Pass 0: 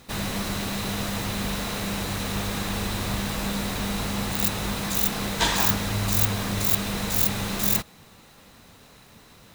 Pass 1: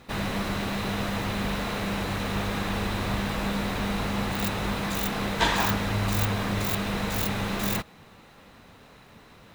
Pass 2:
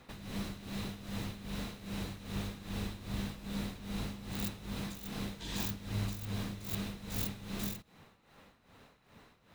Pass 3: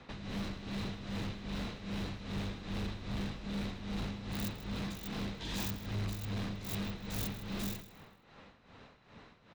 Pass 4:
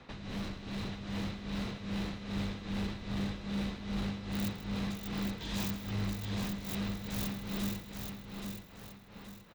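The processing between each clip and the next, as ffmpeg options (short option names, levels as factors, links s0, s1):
-af "bass=f=250:g=-2,treble=f=4000:g=-11,volume=1.19"
-filter_complex "[0:a]acrossover=split=370|3000[s0][s1][s2];[s1]acompressor=threshold=0.00891:ratio=6[s3];[s0][s3][s2]amix=inputs=3:normalize=0,tremolo=f=2.5:d=0.76,volume=0.473"
-filter_complex "[0:a]acrossover=split=110|6300[s0][s1][s2];[s2]aeval=exprs='sgn(val(0))*max(abs(val(0))-0.00211,0)':c=same[s3];[s0][s1][s3]amix=inputs=3:normalize=0,aecho=1:1:157|314|471:0.119|0.038|0.0122,asoftclip=type=tanh:threshold=0.0178,volume=1.5"
-af "aecho=1:1:825|1650|2475|3300:0.531|0.196|0.0727|0.0269"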